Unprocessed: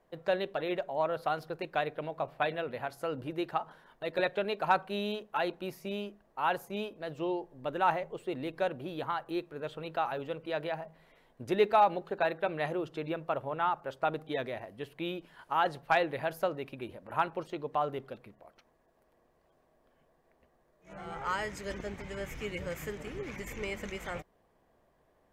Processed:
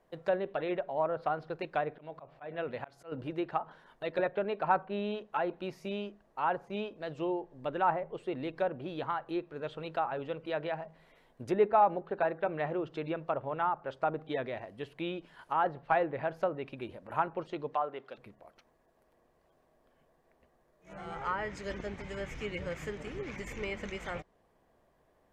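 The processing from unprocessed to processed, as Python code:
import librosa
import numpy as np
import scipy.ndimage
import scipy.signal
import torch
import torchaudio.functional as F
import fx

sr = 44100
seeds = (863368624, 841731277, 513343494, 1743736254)

y = fx.env_lowpass_down(x, sr, base_hz=1500.0, full_db=-27.5)
y = fx.auto_swell(y, sr, attack_ms=215.0, at=(1.95, 3.12))
y = fx.weighting(y, sr, curve='A', at=(17.74, 18.18))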